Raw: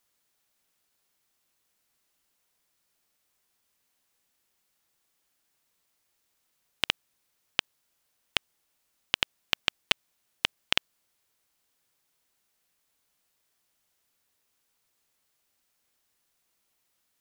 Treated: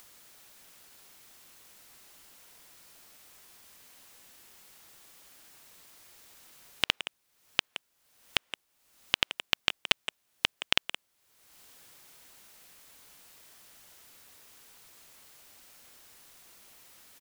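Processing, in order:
upward compression, threshold −39 dBFS
far-end echo of a speakerphone 170 ms, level −7 dB

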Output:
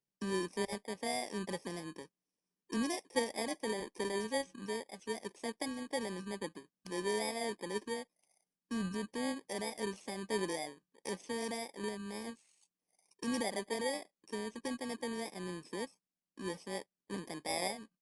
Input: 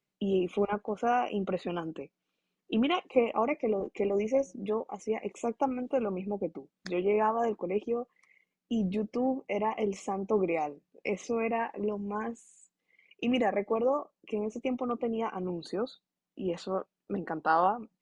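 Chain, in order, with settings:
samples in bit-reversed order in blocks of 32 samples
downsampling to 22,050 Hz
level −7 dB

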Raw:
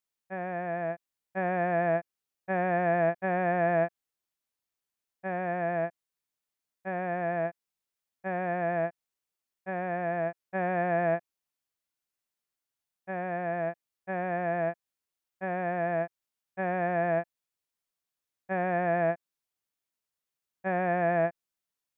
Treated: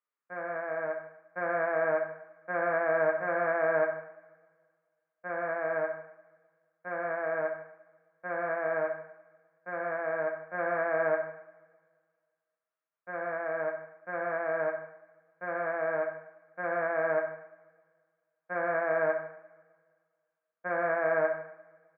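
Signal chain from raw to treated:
loudspeaker in its box 330–2,200 Hz, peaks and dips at 340 Hz −9 dB, 770 Hz −6 dB, 1,300 Hz +7 dB
pitch shifter −1 semitone
coupled-rooms reverb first 0.68 s, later 1.9 s, from −19 dB, DRR 2 dB

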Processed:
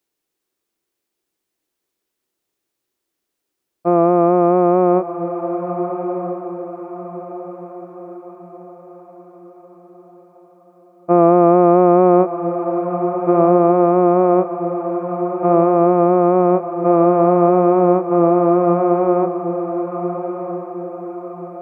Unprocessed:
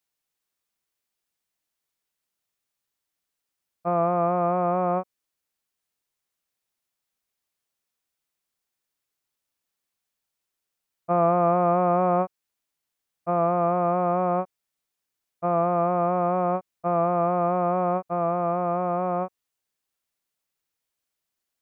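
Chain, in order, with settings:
parametric band 350 Hz +14.5 dB 1 octave
feedback delay with all-pass diffusion 1,289 ms, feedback 43%, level −8.5 dB
level +3.5 dB

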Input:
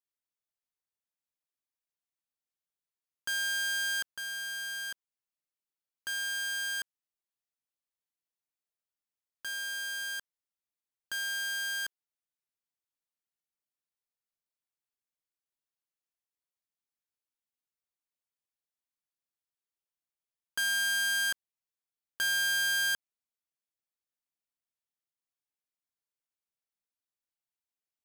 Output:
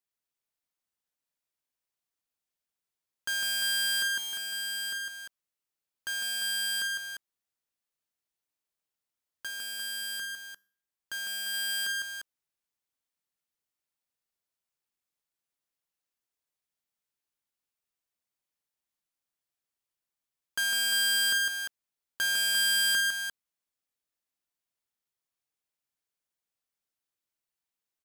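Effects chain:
0:09.47–0:11.54: tuned comb filter 67 Hz, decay 0.53 s, harmonics all, mix 30%
multi-tap delay 54/154/349 ms −14/−4.5/−6.5 dB
level +1.5 dB

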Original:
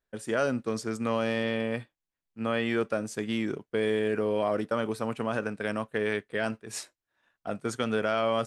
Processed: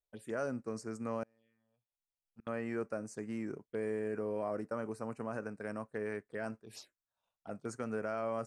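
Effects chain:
0:01.23–0:02.47: gate with flip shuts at −30 dBFS, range −35 dB
phaser swept by the level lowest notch 270 Hz, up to 3,400 Hz, full sweep at −30.5 dBFS
level −9 dB

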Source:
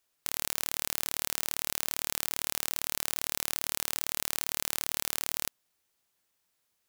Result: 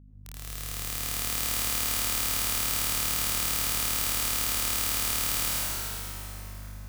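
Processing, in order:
fade in at the beginning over 1.39 s
mains hum 50 Hz, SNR 14 dB
dense smooth reverb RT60 4.2 s, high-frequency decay 0.7×, pre-delay 75 ms, DRR −7.5 dB
level −1.5 dB

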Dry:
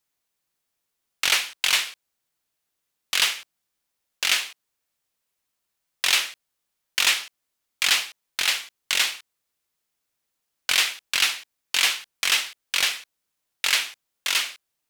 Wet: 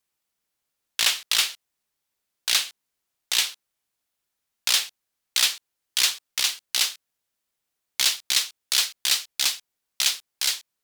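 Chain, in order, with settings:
gliding playback speed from 123% → 152%

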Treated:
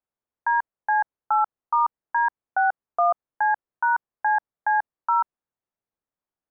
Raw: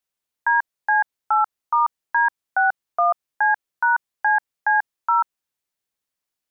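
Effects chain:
low-pass filter 1,200 Hz 12 dB per octave

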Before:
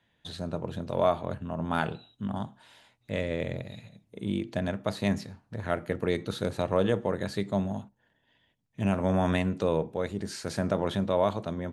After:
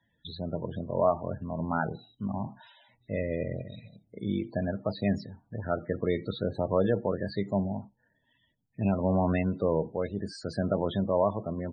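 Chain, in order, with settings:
0:02.35–0:03.19: transient designer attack 0 dB, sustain +6 dB
spectral peaks only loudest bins 32

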